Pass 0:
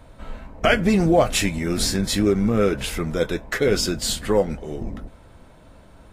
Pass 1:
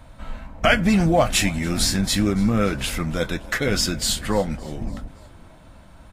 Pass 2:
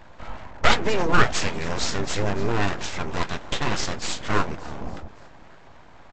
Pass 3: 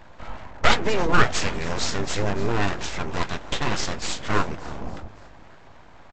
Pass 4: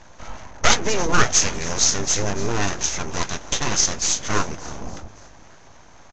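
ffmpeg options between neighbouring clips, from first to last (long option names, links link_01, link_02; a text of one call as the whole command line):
ffmpeg -i in.wav -filter_complex "[0:a]equalizer=frequency=410:width=2.3:gain=-10.5,asplit=5[link_01][link_02][link_03][link_04][link_05];[link_02]adelay=284,afreqshift=33,volume=-22.5dB[link_06];[link_03]adelay=568,afreqshift=66,volume=-27.5dB[link_07];[link_04]adelay=852,afreqshift=99,volume=-32.6dB[link_08];[link_05]adelay=1136,afreqshift=132,volume=-37.6dB[link_09];[link_01][link_06][link_07][link_08][link_09]amix=inputs=5:normalize=0,volume=2dB" out.wav
ffmpeg -i in.wav -af "equalizer=frequency=840:width=1.2:gain=10.5,aresample=16000,aeval=exprs='abs(val(0))':channel_layout=same,aresample=44100,volume=-2.5dB" out.wav
ffmpeg -i in.wav -filter_complex "[0:a]asplit=3[link_01][link_02][link_03];[link_02]adelay=315,afreqshift=-51,volume=-22.5dB[link_04];[link_03]adelay=630,afreqshift=-102,volume=-33dB[link_05];[link_01][link_04][link_05]amix=inputs=3:normalize=0" out.wav
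ffmpeg -i in.wav -af "lowpass=frequency=6300:width_type=q:width=8.8" out.wav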